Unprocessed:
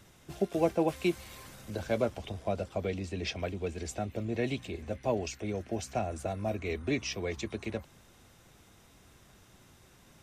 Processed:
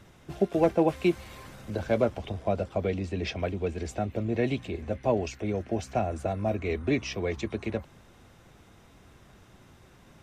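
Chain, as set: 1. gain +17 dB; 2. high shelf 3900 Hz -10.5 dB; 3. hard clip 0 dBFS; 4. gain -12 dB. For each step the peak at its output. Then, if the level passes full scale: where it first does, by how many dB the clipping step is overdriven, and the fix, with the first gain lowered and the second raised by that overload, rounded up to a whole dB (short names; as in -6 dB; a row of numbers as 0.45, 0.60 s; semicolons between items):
+4.5, +4.0, 0.0, -12.0 dBFS; step 1, 4.0 dB; step 1 +13 dB, step 4 -8 dB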